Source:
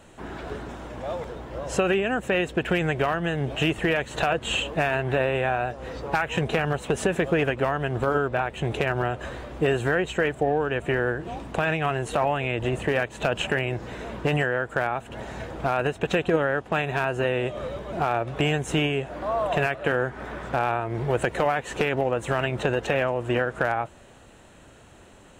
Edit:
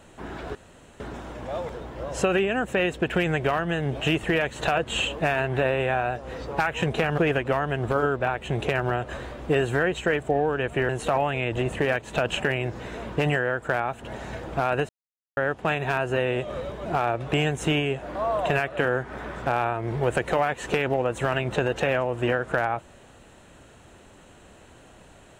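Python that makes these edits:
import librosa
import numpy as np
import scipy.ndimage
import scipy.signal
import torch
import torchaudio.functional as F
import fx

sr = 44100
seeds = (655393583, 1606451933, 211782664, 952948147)

y = fx.edit(x, sr, fx.insert_room_tone(at_s=0.55, length_s=0.45),
    fx.cut(start_s=6.73, length_s=0.57),
    fx.cut(start_s=11.01, length_s=0.95),
    fx.silence(start_s=15.96, length_s=0.48), tone=tone)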